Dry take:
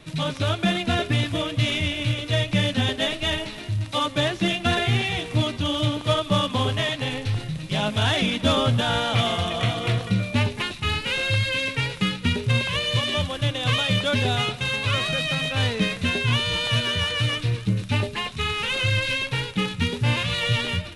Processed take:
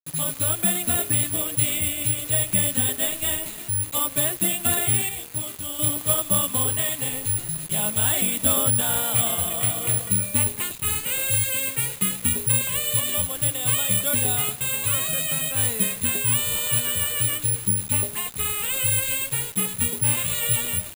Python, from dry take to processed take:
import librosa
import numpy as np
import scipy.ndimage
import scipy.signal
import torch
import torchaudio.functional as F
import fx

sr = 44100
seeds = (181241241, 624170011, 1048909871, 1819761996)

y = fx.comb_fb(x, sr, f0_hz=66.0, decay_s=0.28, harmonics='all', damping=0.0, mix_pct=80, at=(5.09, 5.79))
y = fx.quant_dither(y, sr, seeds[0], bits=6, dither='none')
y = (np.kron(scipy.signal.resample_poly(y, 1, 4), np.eye(4)[0]) * 4)[:len(y)]
y = F.gain(torch.from_numpy(y), -6.0).numpy()